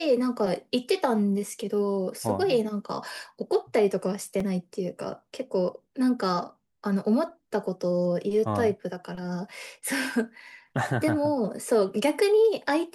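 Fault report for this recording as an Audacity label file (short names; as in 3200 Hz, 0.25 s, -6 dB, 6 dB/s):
4.400000	4.400000	gap 3.5 ms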